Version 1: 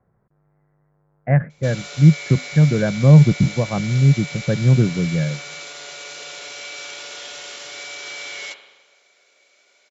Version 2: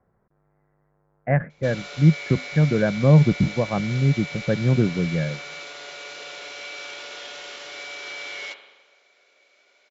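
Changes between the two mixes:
background: add distance through air 120 m; master: add peaking EQ 130 Hz -6.5 dB 0.85 oct

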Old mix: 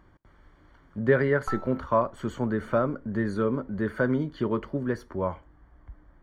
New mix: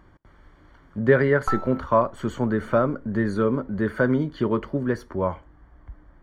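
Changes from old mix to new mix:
speech +4.0 dB; background +7.0 dB

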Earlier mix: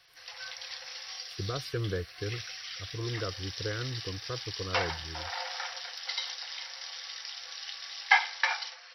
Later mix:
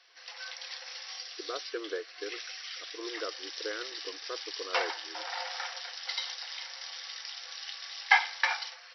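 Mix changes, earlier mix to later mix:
speech: add brick-wall FIR band-pass 290–3600 Hz; master: add tone controls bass -8 dB, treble -1 dB

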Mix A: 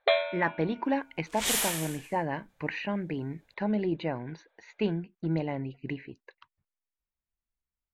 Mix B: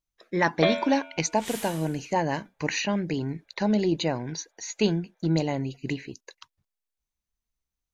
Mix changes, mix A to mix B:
speech: remove four-pole ladder low-pass 3.1 kHz, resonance 20%; first sound: entry +0.55 s; second sound -10.5 dB

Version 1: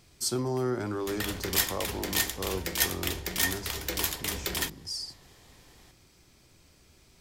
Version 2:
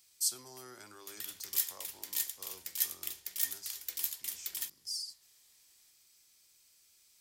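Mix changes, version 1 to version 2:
background -6.5 dB; master: add pre-emphasis filter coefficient 0.97

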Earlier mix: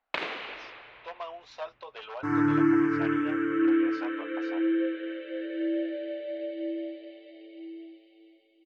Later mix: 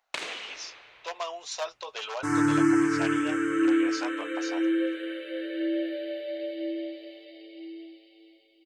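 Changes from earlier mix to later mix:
speech +3.0 dB; first sound -6.5 dB; master: remove distance through air 330 m

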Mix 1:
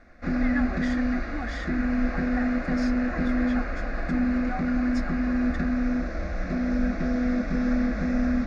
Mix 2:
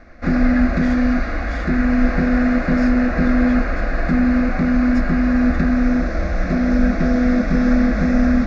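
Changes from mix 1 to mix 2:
background +9.5 dB; reverb: off

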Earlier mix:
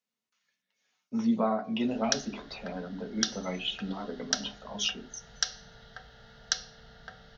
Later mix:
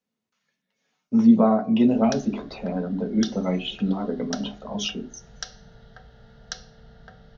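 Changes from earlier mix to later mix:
speech +6.5 dB; master: add tilt shelf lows +6.5 dB, about 800 Hz

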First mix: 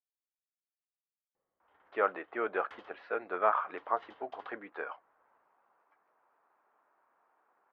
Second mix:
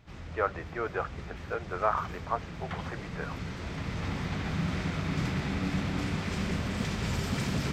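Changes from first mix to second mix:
speech: entry -1.60 s; first sound: unmuted; second sound +10.5 dB

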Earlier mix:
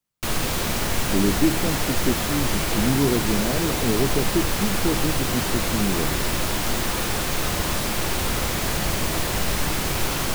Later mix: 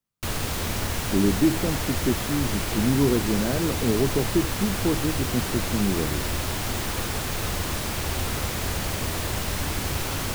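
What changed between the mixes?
background: add peaking EQ 85 Hz +8 dB 0.65 oct; reverb: off

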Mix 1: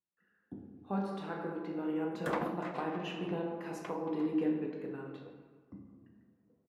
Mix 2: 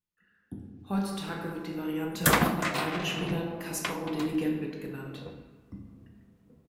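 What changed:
background +9.0 dB; master: remove band-pass filter 550 Hz, Q 0.69

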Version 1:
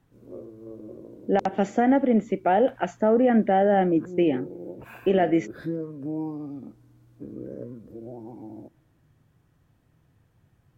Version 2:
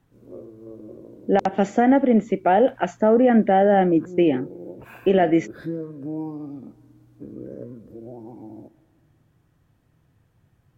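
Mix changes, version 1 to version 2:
speech +3.5 dB; background: send +9.5 dB

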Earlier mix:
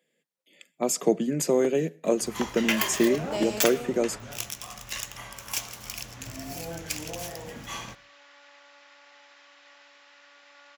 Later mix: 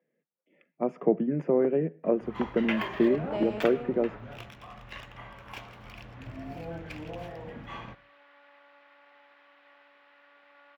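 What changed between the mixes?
speech: add boxcar filter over 11 samples; master: add distance through air 490 m

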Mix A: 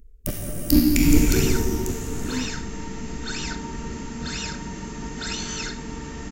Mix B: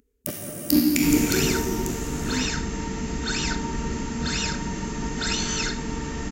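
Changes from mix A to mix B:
first sound: add Bessel high-pass 200 Hz, order 2; second sound +4.0 dB

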